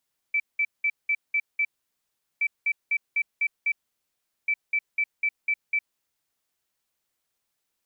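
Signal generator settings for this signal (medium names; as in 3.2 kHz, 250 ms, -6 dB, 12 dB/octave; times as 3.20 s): beep pattern sine 2.32 kHz, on 0.06 s, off 0.19 s, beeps 6, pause 0.76 s, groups 3, -20.5 dBFS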